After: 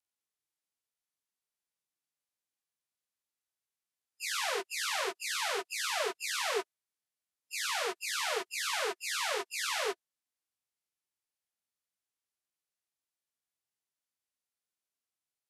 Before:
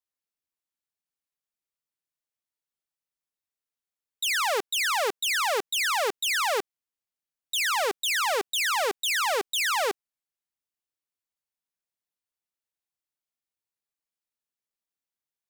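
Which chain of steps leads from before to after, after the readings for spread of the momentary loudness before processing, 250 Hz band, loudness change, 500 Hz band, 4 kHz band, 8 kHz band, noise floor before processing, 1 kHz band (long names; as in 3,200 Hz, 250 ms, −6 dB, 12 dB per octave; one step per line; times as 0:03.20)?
3 LU, −6.0 dB, −8.0 dB, −8.0 dB, −8.0 dB, −6.5 dB, below −85 dBFS, −9.5 dB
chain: partials spread apart or drawn together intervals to 88%
harmonic and percussive parts rebalanced percussive −13 dB
level +4 dB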